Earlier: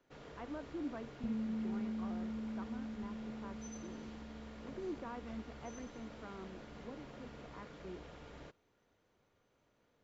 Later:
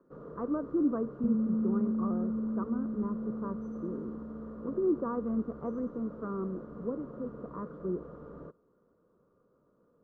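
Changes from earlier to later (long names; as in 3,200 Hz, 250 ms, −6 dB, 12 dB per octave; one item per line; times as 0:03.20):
speech +6.0 dB
master: add drawn EQ curve 110 Hz 0 dB, 170 Hz +11 dB, 280 Hz +7 dB, 510 Hz +10 dB, 800 Hz −6 dB, 1,200 Hz +9 dB, 2,200 Hz −25 dB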